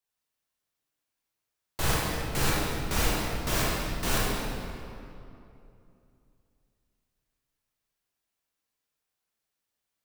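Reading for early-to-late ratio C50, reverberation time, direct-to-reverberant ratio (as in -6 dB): -3.0 dB, 2.8 s, -6.0 dB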